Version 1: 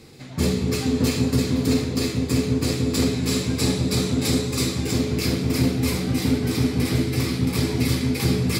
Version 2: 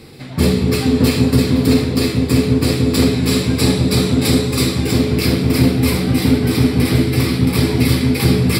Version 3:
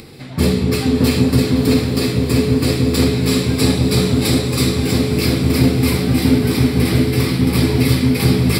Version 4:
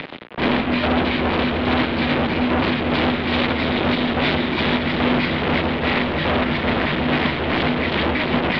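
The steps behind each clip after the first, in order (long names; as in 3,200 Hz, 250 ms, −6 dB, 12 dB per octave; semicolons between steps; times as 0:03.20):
parametric band 6,500 Hz −14 dB 0.27 octaves; level +7.5 dB
upward compression, threshold −34 dBFS; feedback delay with all-pass diffusion 696 ms, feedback 46%, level −10 dB; level −1 dB
square-wave tremolo 2.4 Hz, depth 65%, duty 45%; fuzz pedal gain 32 dB, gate −36 dBFS; single-sideband voice off tune −180 Hz 380–3,500 Hz; level +2 dB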